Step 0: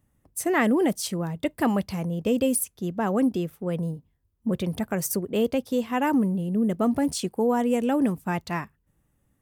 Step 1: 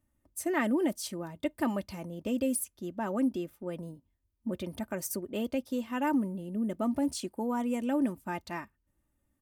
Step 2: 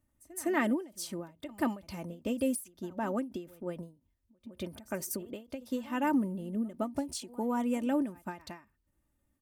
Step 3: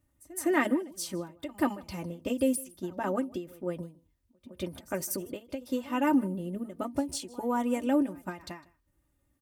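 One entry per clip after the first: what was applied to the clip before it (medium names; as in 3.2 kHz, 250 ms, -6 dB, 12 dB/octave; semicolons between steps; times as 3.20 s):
comb 3.3 ms, depth 54%; trim -8.5 dB
pre-echo 161 ms -20.5 dB; endings held to a fixed fall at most 170 dB/s
comb of notches 220 Hz; delay 155 ms -23 dB; trim +4.5 dB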